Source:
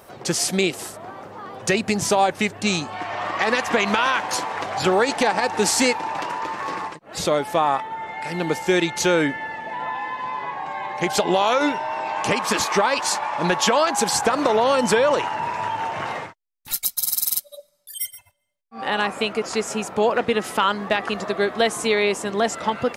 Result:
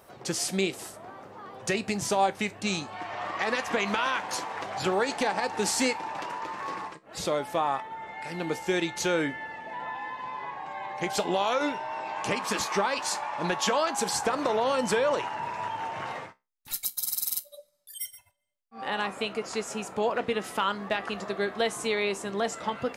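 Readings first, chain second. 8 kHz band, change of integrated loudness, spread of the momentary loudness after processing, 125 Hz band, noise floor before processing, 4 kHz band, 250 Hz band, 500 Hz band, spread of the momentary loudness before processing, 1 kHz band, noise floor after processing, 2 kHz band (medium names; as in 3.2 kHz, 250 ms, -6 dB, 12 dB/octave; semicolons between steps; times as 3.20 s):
-7.5 dB, -7.5 dB, 11 LU, -7.5 dB, -56 dBFS, -7.5 dB, -7.5 dB, -7.5 dB, 11 LU, -7.5 dB, -60 dBFS, -7.5 dB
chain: feedback comb 65 Hz, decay 0.23 s, mix 50%; trim -4.5 dB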